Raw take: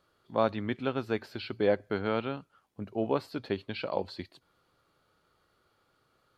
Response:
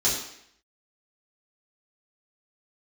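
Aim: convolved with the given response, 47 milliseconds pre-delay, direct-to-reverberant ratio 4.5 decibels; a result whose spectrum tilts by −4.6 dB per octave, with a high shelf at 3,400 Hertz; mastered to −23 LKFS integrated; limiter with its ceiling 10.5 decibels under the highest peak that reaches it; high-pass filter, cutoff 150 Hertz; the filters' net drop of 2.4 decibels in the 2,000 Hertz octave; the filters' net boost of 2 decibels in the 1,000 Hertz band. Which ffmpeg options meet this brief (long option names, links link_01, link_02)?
-filter_complex "[0:a]highpass=150,equalizer=frequency=1000:width_type=o:gain=4,equalizer=frequency=2000:width_type=o:gain=-4,highshelf=frequency=3400:gain=-3,alimiter=limit=-22dB:level=0:latency=1,asplit=2[link_01][link_02];[1:a]atrim=start_sample=2205,adelay=47[link_03];[link_02][link_03]afir=irnorm=-1:irlink=0,volume=-16dB[link_04];[link_01][link_04]amix=inputs=2:normalize=0,volume=11.5dB"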